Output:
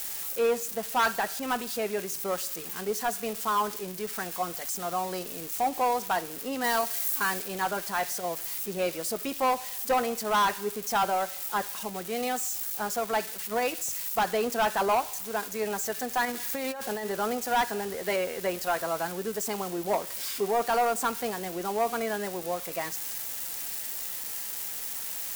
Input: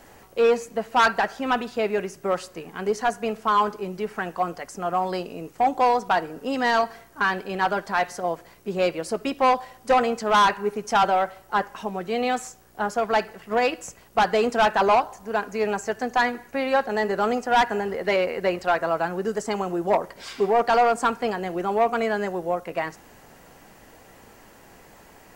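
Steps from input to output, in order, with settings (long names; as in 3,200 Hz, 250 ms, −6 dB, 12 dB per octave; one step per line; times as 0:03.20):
spike at every zero crossing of −20.5 dBFS
0:06.64–0:07.42: high-shelf EQ 5,600 Hz +6.5 dB
0:16.25–0:17.07: compressor whose output falls as the input rises −26 dBFS, ratio −1
level −6.5 dB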